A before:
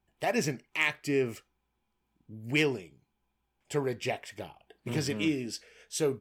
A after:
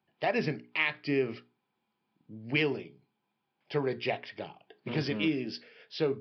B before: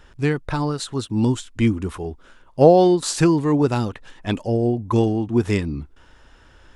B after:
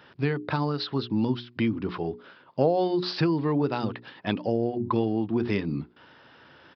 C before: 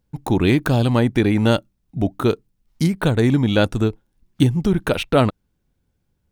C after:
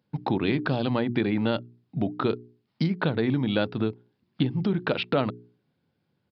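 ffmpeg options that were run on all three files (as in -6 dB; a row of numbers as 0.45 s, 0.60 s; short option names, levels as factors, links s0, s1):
-af "bandreject=f=60:t=h:w=6,bandreject=f=120:t=h:w=6,bandreject=f=180:t=h:w=6,bandreject=f=240:t=h:w=6,bandreject=f=300:t=h:w=6,bandreject=f=360:t=h:w=6,bandreject=f=420:t=h:w=6,acompressor=threshold=0.0562:ratio=3,highpass=f=120:w=0.5412,highpass=f=120:w=1.3066,aresample=11025,aresample=44100,volume=1.19"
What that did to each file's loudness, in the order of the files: -0.5 LU, -7.5 LU, -8.0 LU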